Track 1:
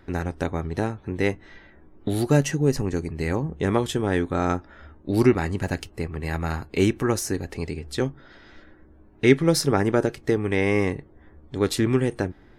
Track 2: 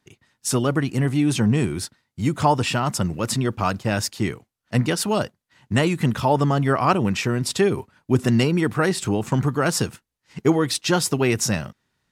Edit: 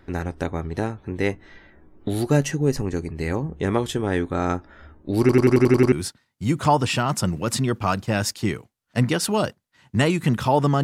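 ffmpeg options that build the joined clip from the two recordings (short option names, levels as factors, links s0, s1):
-filter_complex "[0:a]apad=whole_dur=10.83,atrim=end=10.83,asplit=8[s0][s1][s2][s3][s4][s5][s6][s7];[s0]atrim=end=5.292[s8];[s1]atrim=start=5.198:end=5.292[s9];[s2]atrim=start=5.198:end=5.292[s10];[s3]atrim=start=5.198:end=5.292[s11];[s4]atrim=start=5.198:end=5.292[s12];[s5]atrim=start=5.198:end=5.292[s13];[s6]atrim=start=5.198:end=5.292[s14];[s7]atrim=start=5.198:end=5.292[s15];[1:a]atrim=start=1.688:end=6.6[s16];[s8][s9]acrossfade=d=0.004:c1=hsin:c2=hsin[s17];[s17][s10]acrossfade=d=0.004:c1=hsin:c2=hsin[s18];[s18][s11]acrossfade=d=0.004:c1=hsin:c2=hsin[s19];[s19][s12]acrossfade=d=0.004:c1=hsin:c2=hsin[s20];[s20][s13]acrossfade=d=0.004:c1=hsin:c2=hsin[s21];[s21][s14]acrossfade=d=0.004:c1=hsin:c2=hsin[s22];[s22][s15]acrossfade=d=0.004:c1=hsin:c2=hsin[s23];[s23][s16]acrossfade=d=0.004:c1=hsin:c2=hsin"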